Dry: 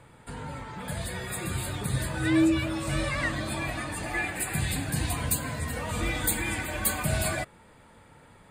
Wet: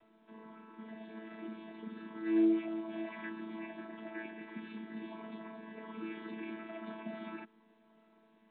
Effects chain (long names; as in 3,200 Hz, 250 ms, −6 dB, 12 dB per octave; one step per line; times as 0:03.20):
channel vocoder with a chord as carrier bare fifth, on A3
level −8 dB
mu-law 64 kbit/s 8,000 Hz